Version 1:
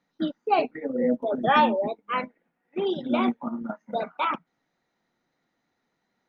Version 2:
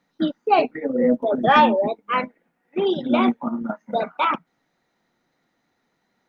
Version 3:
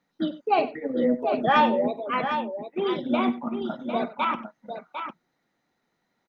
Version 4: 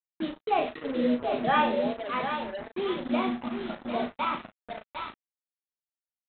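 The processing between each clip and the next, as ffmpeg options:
ffmpeg -i in.wav -af "acontrast=37" out.wav
ffmpeg -i in.wav -af "aecho=1:1:49|95|752:0.119|0.158|0.398,volume=-5dB" out.wav
ffmpeg -i in.wav -filter_complex "[0:a]flanger=delay=7.9:depth=5.1:regen=-72:speed=0.38:shape=sinusoidal,aresample=8000,acrusher=bits=5:mix=0:aa=0.5,aresample=44100,asplit=2[link_01][link_02];[link_02]adelay=37,volume=-8dB[link_03];[link_01][link_03]amix=inputs=2:normalize=0" out.wav

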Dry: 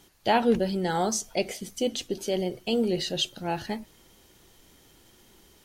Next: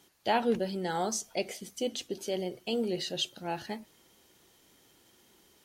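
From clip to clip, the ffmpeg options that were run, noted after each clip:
ffmpeg -i in.wav -af "highpass=frequency=180:poles=1,volume=-4.5dB" out.wav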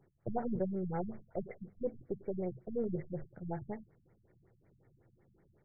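ffmpeg -i in.wav -af "aeval=exprs='if(lt(val(0),0),0.708*val(0),val(0))':channel_layout=same,equalizer=frequency=125:width_type=o:width=1:gain=10,equalizer=frequency=250:width_type=o:width=1:gain=-10,equalizer=frequency=1000:width_type=o:width=1:gain=-11,equalizer=frequency=2000:width_type=o:width=1:gain=-4,equalizer=frequency=4000:width_type=o:width=1:gain=-8,afftfilt=real='re*lt(b*sr/1024,220*pow(2400/220,0.5+0.5*sin(2*PI*5.4*pts/sr)))':imag='im*lt(b*sr/1024,220*pow(2400/220,0.5+0.5*sin(2*PI*5.4*pts/sr)))':win_size=1024:overlap=0.75,volume=3.5dB" out.wav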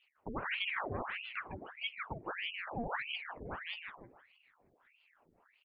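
ffmpeg -i in.wav -filter_complex "[0:a]asplit=2[link_01][link_02];[link_02]asplit=5[link_03][link_04][link_05][link_06][link_07];[link_03]adelay=155,afreqshift=-52,volume=-3.5dB[link_08];[link_04]adelay=310,afreqshift=-104,volume=-10.8dB[link_09];[link_05]adelay=465,afreqshift=-156,volume=-18.2dB[link_10];[link_06]adelay=620,afreqshift=-208,volume=-25.5dB[link_11];[link_07]adelay=775,afreqshift=-260,volume=-32.8dB[link_12];[link_08][link_09][link_10][link_11][link_12]amix=inputs=5:normalize=0[link_13];[link_01][link_13]amix=inputs=2:normalize=0,aeval=exprs='val(0)*sin(2*PI*1500*n/s+1500*0.85/1.6*sin(2*PI*1.6*n/s))':channel_layout=same,volume=-1.5dB" out.wav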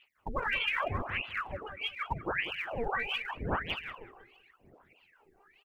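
ffmpeg -i in.wav -filter_complex "[0:a]aphaser=in_gain=1:out_gain=1:delay=2.6:decay=0.71:speed=0.84:type=sinusoidal,asplit=2[link_01][link_02];[link_02]adelay=191,lowpass=frequency=1100:poles=1,volume=-10dB,asplit=2[link_03][link_04];[link_04]adelay=191,lowpass=frequency=1100:poles=1,volume=0.21,asplit=2[link_05][link_06];[link_06]adelay=191,lowpass=frequency=1100:poles=1,volume=0.21[link_07];[link_01][link_03][link_05][link_07]amix=inputs=4:normalize=0,volume=2.5dB" out.wav

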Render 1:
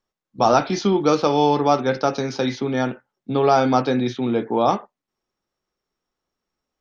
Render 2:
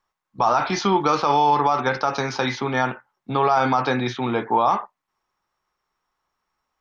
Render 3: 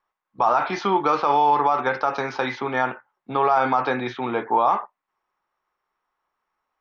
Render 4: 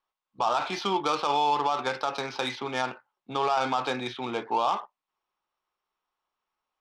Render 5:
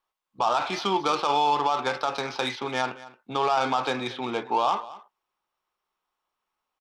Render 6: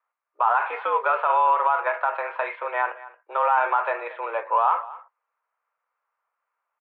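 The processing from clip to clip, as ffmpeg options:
ffmpeg -i in.wav -af "equalizer=frequency=250:width_type=o:width=1:gain=-5,equalizer=frequency=500:width_type=o:width=1:gain=-4,equalizer=frequency=1000:width_type=o:width=1:gain=11,equalizer=frequency=2000:width_type=o:width=1:gain=4,alimiter=level_in=8.5dB:limit=-1dB:release=50:level=0:latency=1,volume=-7.5dB" out.wav
ffmpeg -i in.wav -af "bass=frequency=250:gain=-9,treble=frequency=4000:gain=-14" out.wav
ffmpeg -i in.wav -af "adynamicsmooth=sensitivity=1:basefreq=3100,aexciter=amount=5:drive=6.6:freq=2700,volume=-6.5dB" out.wav
ffmpeg -i in.wav -af "aecho=1:1:226:0.126,volume=2dB" out.wav
ffmpeg -i in.wav -af "highpass=frequency=390:width_type=q:width=0.5412,highpass=frequency=390:width_type=q:width=1.307,lowpass=frequency=2200:width_type=q:width=0.5176,lowpass=frequency=2200:width_type=q:width=0.7071,lowpass=frequency=2200:width_type=q:width=1.932,afreqshift=110,volume=3.5dB" out.wav

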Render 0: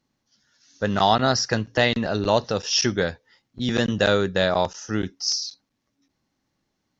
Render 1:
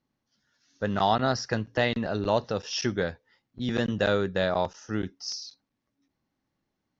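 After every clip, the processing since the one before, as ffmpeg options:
ffmpeg -i in.wav -af "lowpass=frequency=2900:poles=1,volume=-4.5dB" out.wav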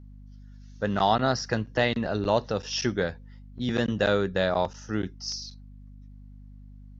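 ffmpeg -i in.wav -af "aeval=exprs='val(0)+0.00501*(sin(2*PI*50*n/s)+sin(2*PI*2*50*n/s)/2+sin(2*PI*3*50*n/s)/3+sin(2*PI*4*50*n/s)/4+sin(2*PI*5*50*n/s)/5)':channel_layout=same,volume=1dB" out.wav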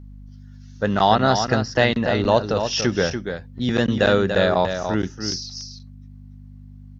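ffmpeg -i in.wav -af "aecho=1:1:288:0.422,volume=6dB" out.wav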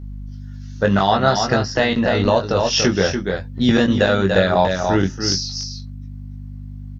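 ffmpeg -i in.wav -filter_complex "[0:a]alimiter=limit=-10dB:level=0:latency=1:release=384,asplit=2[link_01][link_02];[link_02]adelay=21,volume=-4.5dB[link_03];[link_01][link_03]amix=inputs=2:normalize=0,volume=5.5dB" out.wav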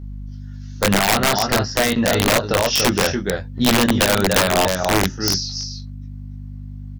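ffmpeg -i in.wav -af "aeval=exprs='(mod(2.66*val(0)+1,2)-1)/2.66':channel_layout=same" out.wav

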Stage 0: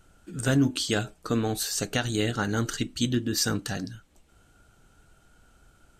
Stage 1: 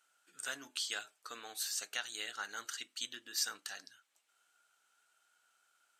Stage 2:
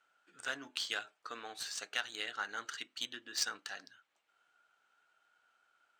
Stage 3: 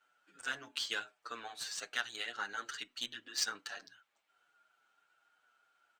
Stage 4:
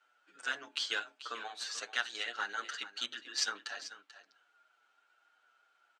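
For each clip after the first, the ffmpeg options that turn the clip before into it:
ffmpeg -i in.wav -af "highpass=1200,volume=-8dB" out.wav
ffmpeg -i in.wav -af "highshelf=frequency=9200:gain=6,adynamicsmooth=sensitivity=3.5:basefreq=3000,volume=4dB" out.wav
ffmpeg -i in.wav -filter_complex "[0:a]asplit=2[link_01][link_02];[link_02]adelay=7.4,afreqshift=-2.8[link_03];[link_01][link_03]amix=inputs=2:normalize=1,volume=3dB" out.wav
ffmpeg -i in.wav -af "highpass=290,lowpass=6900,aecho=1:1:438:0.2,volume=2.5dB" out.wav

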